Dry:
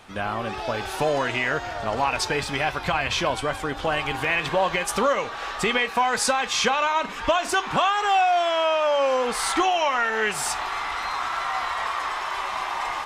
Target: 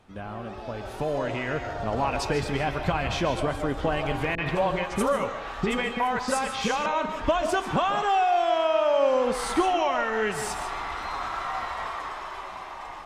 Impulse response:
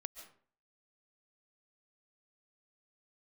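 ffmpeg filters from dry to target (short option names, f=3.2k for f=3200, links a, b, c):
-filter_complex "[0:a]tiltshelf=f=660:g=6[a];[1:a]atrim=start_sample=2205,afade=t=out:st=0.32:d=0.01,atrim=end_sample=14553[b];[a][b]afir=irnorm=-1:irlink=0,dynaudnorm=f=250:g=11:m=7.5dB,asettb=1/sr,asplit=3[c][d][e];[c]atrim=end=4.354[f];[d]atrim=start=4.35:end=6.86,asetpts=PTS-STARTPTS,afade=t=in:d=0.004:c=qsin,afade=t=out:st=2.506:d=0.004:c=qsin,acrossover=split=440|5400[g][h][i];[h]adelay=30[j];[i]adelay=110[k];[g][j][k]amix=inputs=3:normalize=0,atrim=end_sample=110691[l];[e]atrim=start=6.856[m];[f][l]acrossfade=d=0.004:c1=hsin:c2=qsin[n];[n][m]acrossfade=d=0.004:c1=qsin:c2=hsin,volume=-5dB"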